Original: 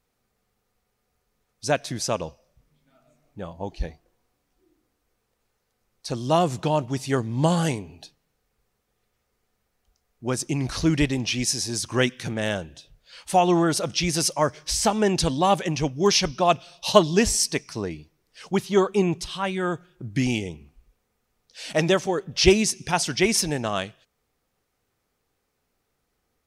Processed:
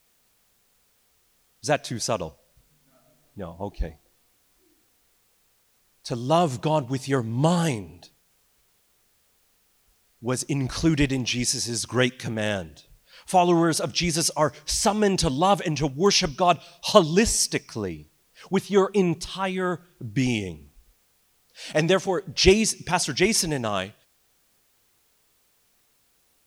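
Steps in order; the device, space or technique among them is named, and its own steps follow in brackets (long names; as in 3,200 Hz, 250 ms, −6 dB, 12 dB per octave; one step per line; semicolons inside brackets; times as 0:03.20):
plain cassette with noise reduction switched in (one half of a high-frequency compander decoder only; tape wow and flutter 25 cents; white noise bed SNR 40 dB)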